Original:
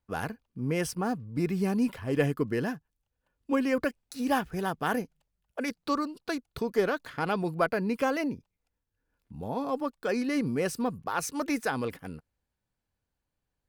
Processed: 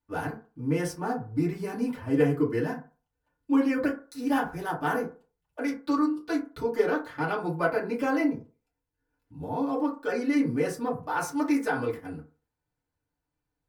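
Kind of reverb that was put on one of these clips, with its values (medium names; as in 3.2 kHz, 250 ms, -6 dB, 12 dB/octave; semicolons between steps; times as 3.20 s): FDN reverb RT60 0.36 s, low-frequency decay 0.85×, high-frequency decay 0.4×, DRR -7 dB; trim -7.5 dB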